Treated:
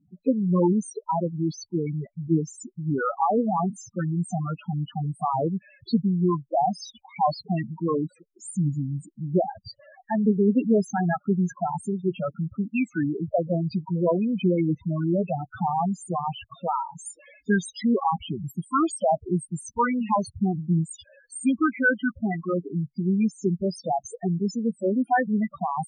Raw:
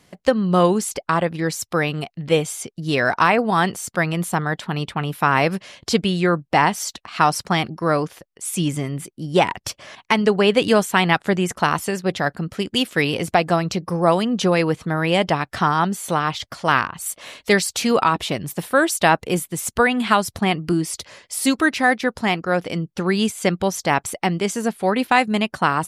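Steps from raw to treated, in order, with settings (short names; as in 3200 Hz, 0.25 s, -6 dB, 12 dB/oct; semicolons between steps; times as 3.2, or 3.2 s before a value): formant shift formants -3 st; loudest bins only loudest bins 4; gain -2 dB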